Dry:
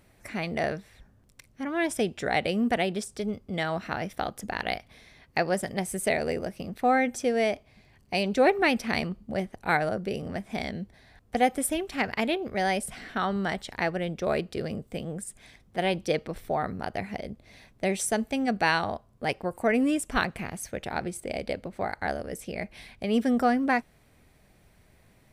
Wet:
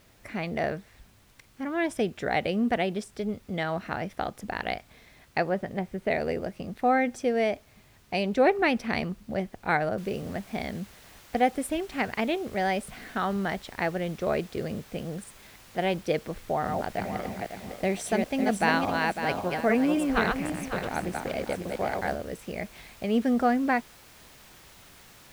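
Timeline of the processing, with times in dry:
5.45–6.11 air absorption 320 m
9.98 noise floor step -57 dB -47 dB
16.38–22.15 regenerating reverse delay 0.276 s, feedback 50%, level -3 dB
whole clip: high shelf 5000 Hz -10.5 dB

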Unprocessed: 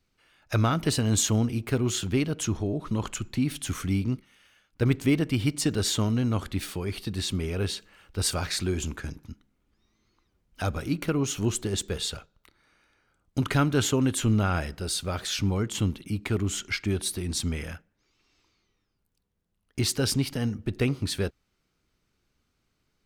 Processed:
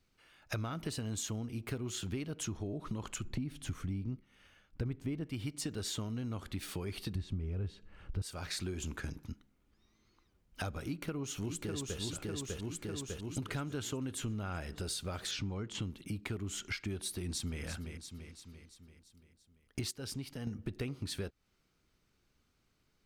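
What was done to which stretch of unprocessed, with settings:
3.24–5.26 tilt -2 dB/oct
7.15–8.22 RIAA curve playback
10.83–12 echo throw 0.6 s, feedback 55%, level -4 dB
15.31–15.82 LPF 5700 Hz
17.12–17.63 echo throw 0.34 s, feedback 55%, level -13 dB
19.91–20.47 gain -11.5 dB
whole clip: compressor 6:1, threshold -35 dBFS; gain -1 dB

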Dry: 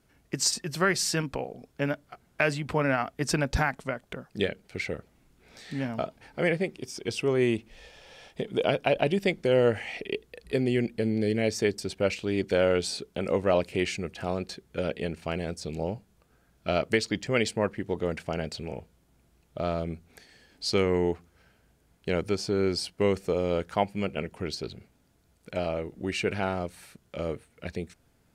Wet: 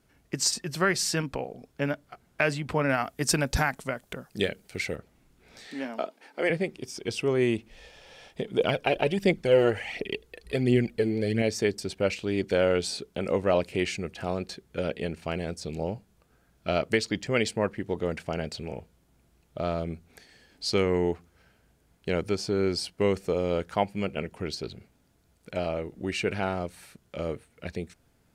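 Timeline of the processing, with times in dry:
2.89–4.96 high shelf 6200 Hz +11.5 dB
5.67–6.5 HPF 260 Hz 24 dB/oct
8.59–11.42 phaser 1.4 Hz

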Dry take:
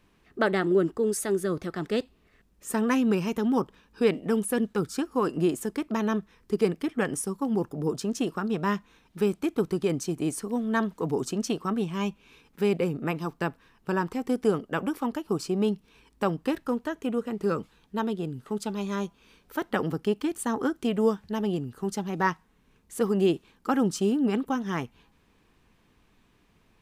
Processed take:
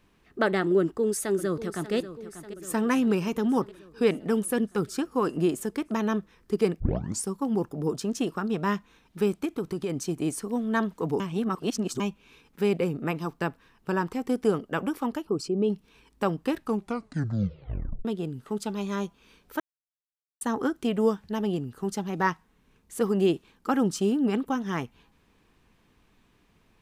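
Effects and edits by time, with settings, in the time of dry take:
0.79–1.94 echo throw 0.59 s, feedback 65%, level -13 dB
6.8 tape start 0.45 s
9.45–9.96 compressor 2.5:1, threshold -27 dBFS
11.2–12 reverse
15.25–15.7 formant sharpening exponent 1.5
16.58 tape stop 1.47 s
19.6–20.41 mute

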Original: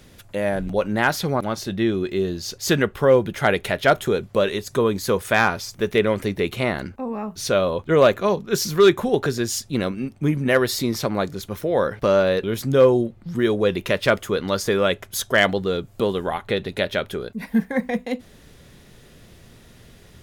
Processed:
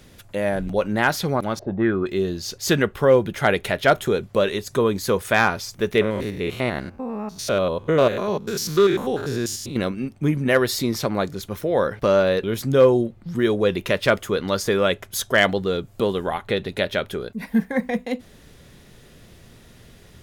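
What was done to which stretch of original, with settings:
1.59–2.06 envelope low-pass 550–1600 Hz up, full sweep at -16 dBFS
6.01–9.76 stepped spectrum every 0.1 s

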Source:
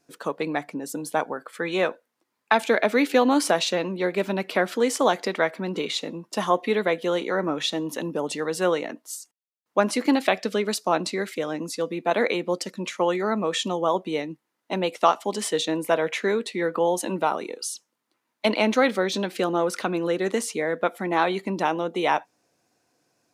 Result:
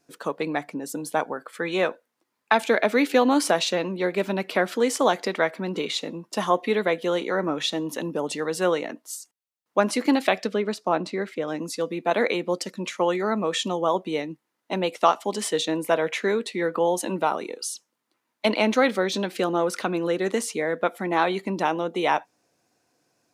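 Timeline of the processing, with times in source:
10.47–11.48 LPF 1900 Hz 6 dB/oct

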